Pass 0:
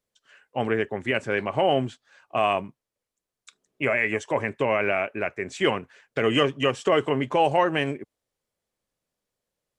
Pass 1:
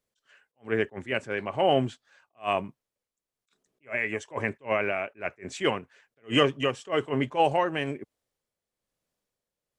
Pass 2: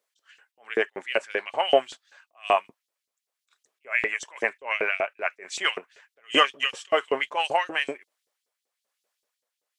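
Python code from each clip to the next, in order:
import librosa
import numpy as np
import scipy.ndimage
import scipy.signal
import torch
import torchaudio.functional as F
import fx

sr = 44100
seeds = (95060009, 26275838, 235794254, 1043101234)

y1 = x * (1.0 - 0.46 / 2.0 + 0.46 / 2.0 * np.cos(2.0 * np.pi * 1.1 * (np.arange(len(x)) / sr)))
y1 = fx.attack_slew(y1, sr, db_per_s=310.0)
y2 = fx.filter_lfo_highpass(y1, sr, shape='saw_up', hz=5.2, low_hz=380.0, high_hz=5200.0, q=1.5)
y2 = F.gain(torch.from_numpy(y2), 4.5).numpy()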